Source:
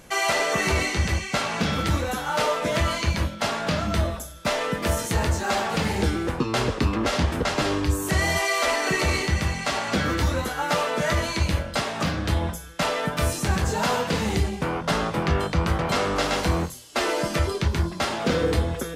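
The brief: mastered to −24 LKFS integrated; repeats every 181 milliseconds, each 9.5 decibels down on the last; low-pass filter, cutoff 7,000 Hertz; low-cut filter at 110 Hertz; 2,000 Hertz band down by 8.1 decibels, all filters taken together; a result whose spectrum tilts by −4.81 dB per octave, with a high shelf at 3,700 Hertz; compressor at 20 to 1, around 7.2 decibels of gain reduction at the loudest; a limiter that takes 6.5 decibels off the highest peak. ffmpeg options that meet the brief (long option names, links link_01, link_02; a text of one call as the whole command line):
ffmpeg -i in.wav -af "highpass=110,lowpass=7000,equalizer=frequency=2000:width_type=o:gain=-8,highshelf=frequency=3700:gain=-8,acompressor=threshold=-27dB:ratio=20,alimiter=limit=-24dB:level=0:latency=1,aecho=1:1:181|362|543|724:0.335|0.111|0.0365|0.012,volume=9dB" out.wav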